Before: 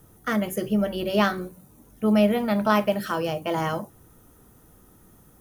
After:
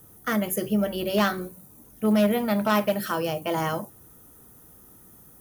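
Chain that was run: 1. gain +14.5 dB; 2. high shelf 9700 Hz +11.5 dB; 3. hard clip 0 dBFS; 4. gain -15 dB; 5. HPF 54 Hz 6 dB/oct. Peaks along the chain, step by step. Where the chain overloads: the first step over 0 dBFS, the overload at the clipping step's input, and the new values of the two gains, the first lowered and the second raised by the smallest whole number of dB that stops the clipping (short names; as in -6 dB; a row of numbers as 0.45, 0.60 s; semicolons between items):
+7.0, +7.0, 0.0, -15.0, -13.0 dBFS; step 1, 7.0 dB; step 1 +7.5 dB, step 4 -8 dB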